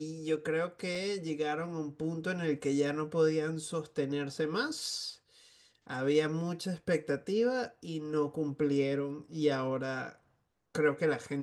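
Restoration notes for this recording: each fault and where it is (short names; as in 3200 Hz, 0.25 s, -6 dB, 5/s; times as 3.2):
0.95 gap 3.6 ms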